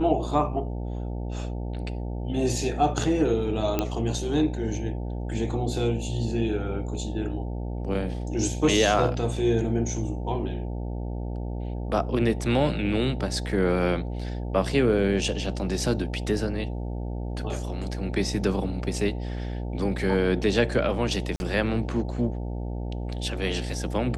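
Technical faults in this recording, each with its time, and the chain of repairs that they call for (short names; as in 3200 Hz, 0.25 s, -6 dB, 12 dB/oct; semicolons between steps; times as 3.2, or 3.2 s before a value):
buzz 60 Hz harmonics 15 -31 dBFS
3.79 pop -10 dBFS
21.36–21.4 gap 41 ms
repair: de-click; de-hum 60 Hz, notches 15; interpolate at 21.36, 41 ms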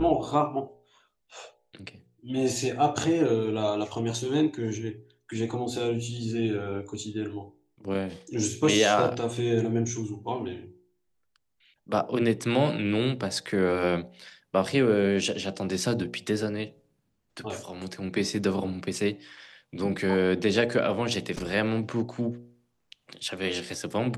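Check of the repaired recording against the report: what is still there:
none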